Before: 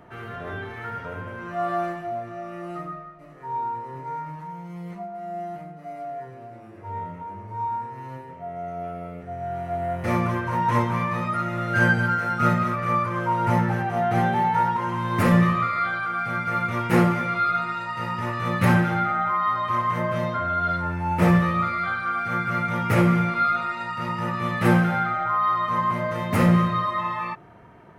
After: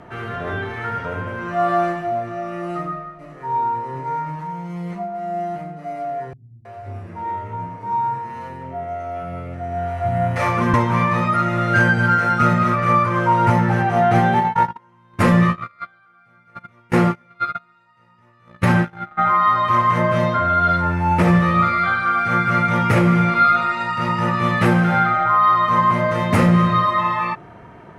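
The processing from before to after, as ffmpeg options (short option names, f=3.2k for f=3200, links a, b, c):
-filter_complex "[0:a]asettb=1/sr,asplit=3[a][b][c];[a]atrim=end=6.334[d];[b]atrim=start=6.33:end=10.74,asetpts=PTS-STARTPTS,afade=t=in:d=0.004:c=qsin,afade=t=out:st=4.406:d=0.004:c=qsin,acrossover=split=150|460[e][f][g];[g]adelay=320[h];[f]adelay=530[i];[e][i][h]amix=inputs=3:normalize=0,atrim=end_sample=194481[j];[c]atrim=start=10.736[k];[d][j]acrossfade=d=0.004:c1=hsin:c2=qsin[l];[l][k]acrossfade=d=0.004:c1=qsin:c2=hsin,asplit=3[m][n][o];[m]afade=t=out:st=14.39:d=0.02[p];[n]agate=range=-34dB:threshold=-21dB:ratio=16:release=100:detection=peak,afade=t=in:st=14.39:d=0.02,afade=t=out:st=19.17:d=0.02[q];[o]afade=t=in:st=19.17:d=0.02[r];[p][q][r]amix=inputs=3:normalize=0,lowpass=9.9k,alimiter=limit=-13dB:level=0:latency=1:release=239,volume=7.5dB"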